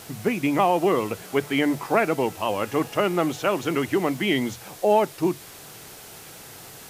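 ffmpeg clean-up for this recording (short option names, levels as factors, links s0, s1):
-af "adeclick=t=4,afwtdn=0.0071"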